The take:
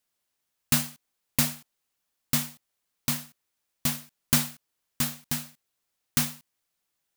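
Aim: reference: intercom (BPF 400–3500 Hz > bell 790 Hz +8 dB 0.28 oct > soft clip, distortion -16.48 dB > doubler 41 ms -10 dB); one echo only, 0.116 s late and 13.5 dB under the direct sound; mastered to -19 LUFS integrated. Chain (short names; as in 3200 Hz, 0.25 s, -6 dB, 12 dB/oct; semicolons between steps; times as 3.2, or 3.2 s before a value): BPF 400–3500 Hz; bell 790 Hz +8 dB 0.28 oct; echo 0.116 s -13.5 dB; soft clip -23 dBFS; doubler 41 ms -10 dB; gain +19.5 dB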